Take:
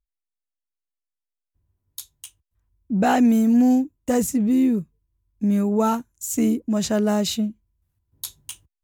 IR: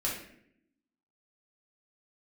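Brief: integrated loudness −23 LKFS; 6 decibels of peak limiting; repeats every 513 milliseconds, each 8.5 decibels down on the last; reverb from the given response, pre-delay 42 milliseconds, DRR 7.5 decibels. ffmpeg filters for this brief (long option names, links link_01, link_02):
-filter_complex "[0:a]alimiter=limit=-15.5dB:level=0:latency=1,aecho=1:1:513|1026|1539|2052:0.376|0.143|0.0543|0.0206,asplit=2[link_01][link_02];[1:a]atrim=start_sample=2205,adelay=42[link_03];[link_02][link_03]afir=irnorm=-1:irlink=0,volume=-13dB[link_04];[link_01][link_04]amix=inputs=2:normalize=0"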